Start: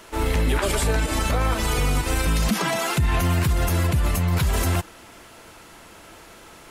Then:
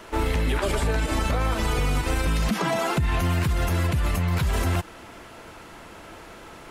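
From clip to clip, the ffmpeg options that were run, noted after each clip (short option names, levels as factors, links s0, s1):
-filter_complex "[0:a]highshelf=f=4000:g=-9.5,acrossover=split=1300|2900[s0][s1][s2];[s0]acompressor=threshold=0.0562:ratio=4[s3];[s1]acompressor=threshold=0.0112:ratio=4[s4];[s2]acompressor=threshold=0.0112:ratio=4[s5];[s3][s4][s5]amix=inputs=3:normalize=0,volume=1.5"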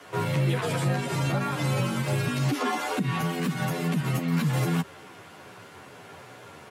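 -filter_complex "[0:a]afreqshift=82,asplit=2[s0][s1];[s1]adelay=11.3,afreqshift=-2.4[s2];[s0][s2]amix=inputs=2:normalize=1"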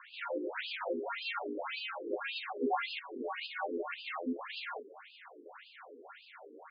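-af "afftfilt=real='re*between(b*sr/1024,340*pow(3600/340,0.5+0.5*sin(2*PI*1.8*pts/sr))/1.41,340*pow(3600/340,0.5+0.5*sin(2*PI*1.8*pts/sr))*1.41)':imag='im*between(b*sr/1024,340*pow(3600/340,0.5+0.5*sin(2*PI*1.8*pts/sr))/1.41,340*pow(3600/340,0.5+0.5*sin(2*PI*1.8*pts/sr))*1.41)':win_size=1024:overlap=0.75"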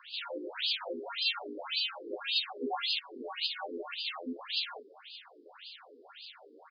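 -af "aresample=11025,aresample=44100,aexciter=amount=6.8:drive=7.2:freq=3100,volume=0.708"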